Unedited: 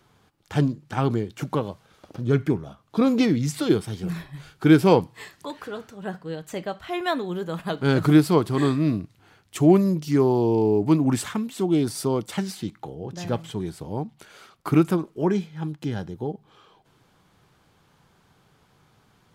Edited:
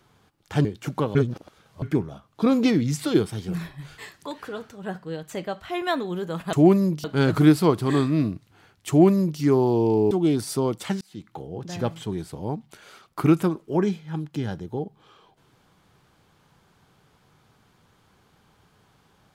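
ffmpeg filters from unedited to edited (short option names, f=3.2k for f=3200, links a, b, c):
-filter_complex "[0:a]asplit=9[a][b][c][d][e][f][g][h][i];[a]atrim=end=0.652[j];[b]atrim=start=1.198:end=1.702[k];[c]atrim=start=1.698:end=2.372,asetpts=PTS-STARTPTS,areverse[l];[d]atrim=start=2.368:end=4.532[m];[e]atrim=start=5.168:end=7.722[n];[f]atrim=start=9.568:end=10.082[o];[g]atrim=start=7.718:end=10.792[p];[h]atrim=start=11.588:end=12.49,asetpts=PTS-STARTPTS,afade=t=out:st=0.898:d=0.004:c=hsin[q];[i]atrim=start=12.49,asetpts=PTS-STARTPTS,afade=t=in:d=0.41[r];[j][k]acrossfade=d=0.004:c1=hsin:c2=hsin[s];[s][l]acrossfade=d=0.004:c1=hsin:c2=hsin[t];[t][m]acrossfade=d=0.004:c1=hsin:c2=hsin[u];[u][n]acrossfade=d=0.004:c1=hsin:c2=hsin[v];[v][o]acrossfade=d=0.004:c1=hsin:c2=hsin[w];[w][p]acrossfade=d=0.004:c1=hsin:c2=hsin[x];[q][r]concat=n=2:v=0:a=1[y];[x][y]acrossfade=d=0.004:c1=hsin:c2=hsin"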